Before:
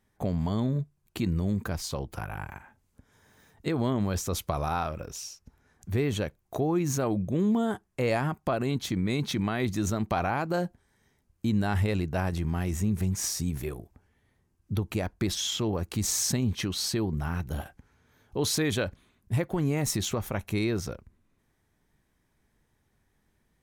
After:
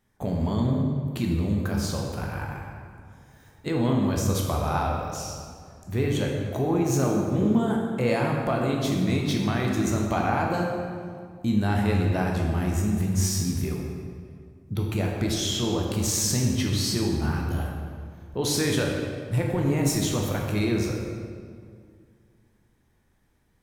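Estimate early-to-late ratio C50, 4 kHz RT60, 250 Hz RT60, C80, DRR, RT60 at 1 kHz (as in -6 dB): 1.5 dB, 1.4 s, 2.5 s, 3.0 dB, -1.0 dB, 2.0 s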